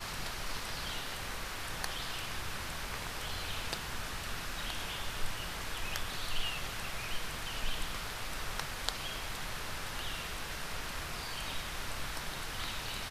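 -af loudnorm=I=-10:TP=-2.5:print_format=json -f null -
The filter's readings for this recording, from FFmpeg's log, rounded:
"input_i" : "-38.6",
"input_tp" : "-10.0",
"input_lra" : "1.0",
"input_thresh" : "-48.6",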